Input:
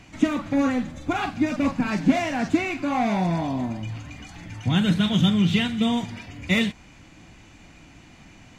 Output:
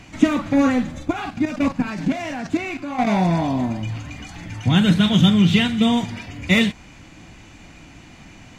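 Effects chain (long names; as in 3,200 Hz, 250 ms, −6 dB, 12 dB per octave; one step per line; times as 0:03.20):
0:01.03–0:03.07: output level in coarse steps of 11 dB
level +5 dB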